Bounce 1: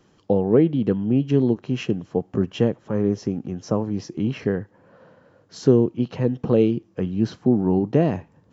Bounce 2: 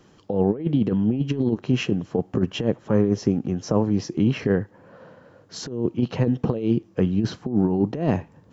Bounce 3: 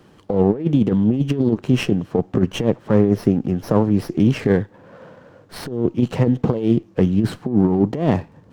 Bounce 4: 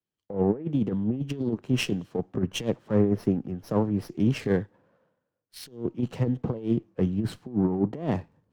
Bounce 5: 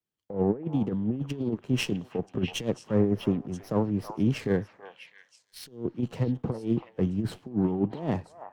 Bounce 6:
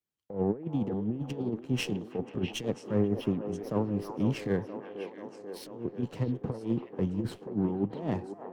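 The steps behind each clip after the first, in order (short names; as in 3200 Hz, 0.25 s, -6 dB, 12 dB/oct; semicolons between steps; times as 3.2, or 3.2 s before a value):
negative-ratio compressor -21 dBFS, ratio -0.5; gain +1.5 dB
running maximum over 5 samples; gain +4.5 dB
three-band expander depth 100%; gain -9 dB
delay with a stepping band-pass 0.327 s, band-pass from 990 Hz, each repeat 1.4 oct, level -5 dB; gain -1.5 dB
band-limited delay 0.487 s, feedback 71%, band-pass 650 Hz, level -7 dB; gain -3.5 dB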